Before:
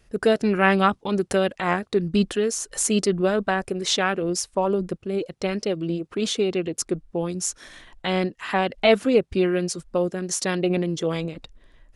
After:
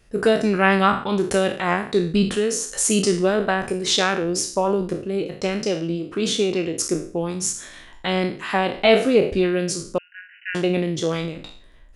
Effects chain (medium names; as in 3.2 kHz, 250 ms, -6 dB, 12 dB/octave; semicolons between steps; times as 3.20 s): spectral sustain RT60 0.46 s; 9.98–10.55 s: brick-wall FIR band-pass 1.4–3 kHz; trim +1 dB